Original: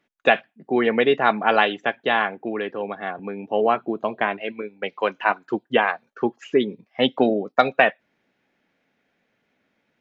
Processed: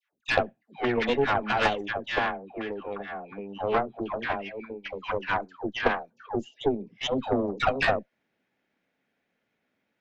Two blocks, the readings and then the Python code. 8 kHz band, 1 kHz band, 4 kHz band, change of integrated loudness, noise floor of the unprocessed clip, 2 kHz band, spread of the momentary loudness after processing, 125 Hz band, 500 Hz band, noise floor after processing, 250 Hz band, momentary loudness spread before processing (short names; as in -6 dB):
n/a, -6.5 dB, -5.5 dB, -6.5 dB, -72 dBFS, -6.5 dB, 11 LU, +0.5 dB, -7.0 dB, -79 dBFS, -6.5 dB, 11 LU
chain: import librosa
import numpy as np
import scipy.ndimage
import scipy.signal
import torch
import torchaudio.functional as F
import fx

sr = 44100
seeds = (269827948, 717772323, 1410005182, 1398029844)

y = fx.spec_box(x, sr, start_s=6.27, length_s=0.34, low_hz=930.0, high_hz=2700.0, gain_db=-22)
y = fx.dispersion(y, sr, late='lows', ms=135.0, hz=880.0)
y = fx.cheby_harmonics(y, sr, harmonics=(6,), levels_db=(-17,), full_scale_db=-1.0)
y = y * 10.0 ** (-7.0 / 20.0)